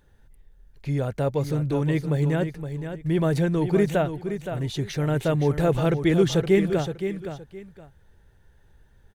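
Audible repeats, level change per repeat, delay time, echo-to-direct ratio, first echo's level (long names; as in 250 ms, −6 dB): 2, −12.5 dB, 518 ms, −9.0 dB, −9.0 dB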